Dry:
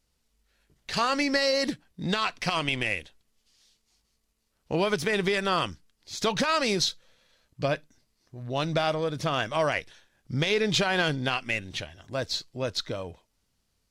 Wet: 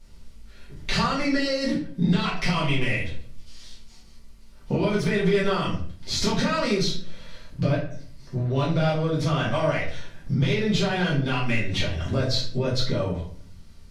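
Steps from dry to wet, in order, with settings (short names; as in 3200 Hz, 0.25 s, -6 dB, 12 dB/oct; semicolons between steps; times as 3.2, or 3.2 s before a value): in parallel at -8.5 dB: soft clip -28 dBFS, distortion -8 dB; on the sum: low shelf 330 Hz +6 dB; compressor 8:1, threshold -37 dBFS, peak gain reduction 19.5 dB; high shelf 11000 Hz -10 dB; shoebox room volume 53 m³, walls mixed, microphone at 1.7 m; gain +6 dB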